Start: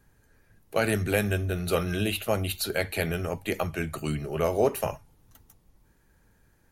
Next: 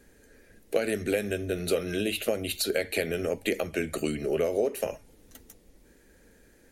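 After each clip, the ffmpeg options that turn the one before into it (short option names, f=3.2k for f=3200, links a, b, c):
-af "acompressor=threshold=-33dB:ratio=10,equalizer=f=125:t=o:w=1:g=-9,equalizer=f=250:t=o:w=1:g=7,equalizer=f=500:t=o:w=1:g=10,equalizer=f=1k:t=o:w=1:g=-8,equalizer=f=2k:t=o:w=1:g=6,equalizer=f=4k:t=o:w=1:g=3,equalizer=f=8k:t=o:w=1:g=6,volume=3dB"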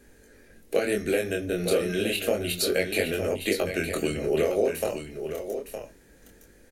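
-af "flanger=delay=20:depth=7.9:speed=0.31,aecho=1:1:913:0.376,volume=5.5dB"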